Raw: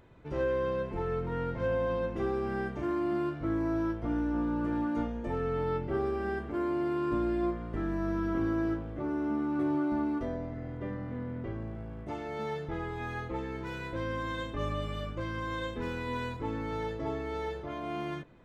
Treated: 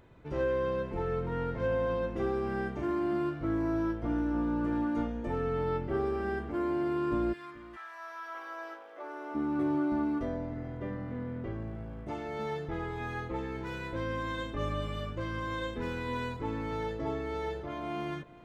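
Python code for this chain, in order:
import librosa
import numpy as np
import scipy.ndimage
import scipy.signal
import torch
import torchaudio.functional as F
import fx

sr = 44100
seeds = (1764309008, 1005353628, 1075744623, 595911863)

y = fx.highpass(x, sr, hz=fx.line((7.32, 1300.0), (9.34, 440.0)), slope=24, at=(7.32, 9.34), fade=0.02)
y = y + 10.0 ** (-19.5 / 20.0) * np.pad(y, (int(433 * sr / 1000.0), 0))[:len(y)]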